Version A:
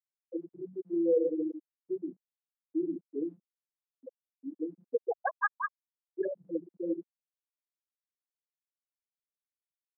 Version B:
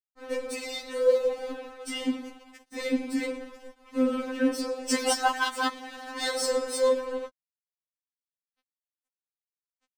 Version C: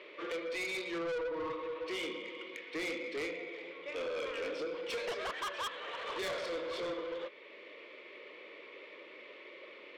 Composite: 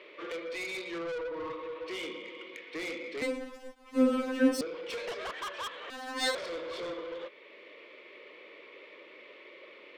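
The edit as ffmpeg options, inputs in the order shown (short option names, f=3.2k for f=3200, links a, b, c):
-filter_complex "[1:a]asplit=2[a][b];[2:a]asplit=3[c][d][e];[c]atrim=end=3.222[f];[a]atrim=start=3.218:end=4.612[g];[d]atrim=start=4.608:end=5.902[h];[b]atrim=start=5.898:end=6.352[i];[e]atrim=start=6.348[j];[f][g]acrossfade=d=0.004:c1=hsin:c2=hsin[k];[k][h]acrossfade=d=0.004:c1=hsin:c2=hsin[l];[l][i]acrossfade=d=0.004:c1=hsin:c2=hsin[m];[m][j]acrossfade=d=0.004:c1=hsin:c2=hsin"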